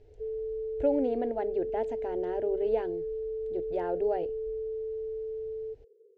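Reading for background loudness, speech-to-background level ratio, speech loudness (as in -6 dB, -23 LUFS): -35.5 LUFS, 3.0 dB, -32.5 LUFS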